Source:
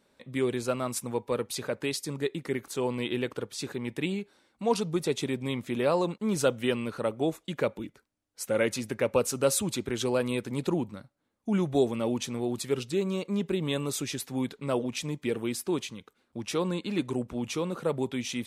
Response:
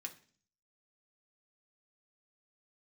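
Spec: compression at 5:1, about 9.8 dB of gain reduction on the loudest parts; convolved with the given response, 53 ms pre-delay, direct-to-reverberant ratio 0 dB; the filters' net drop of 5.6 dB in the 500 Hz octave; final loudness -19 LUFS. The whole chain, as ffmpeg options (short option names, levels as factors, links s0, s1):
-filter_complex "[0:a]equalizer=f=500:t=o:g=-7,acompressor=threshold=0.0178:ratio=5,asplit=2[s0][s1];[1:a]atrim=start_sample=2205,adelay=53[s2];[s1][s2]afir=irnorm=-1:irlink=0,volume=1.41[s3];[s0][s3]amix=inputs=2:normalize=0,volume=7.94"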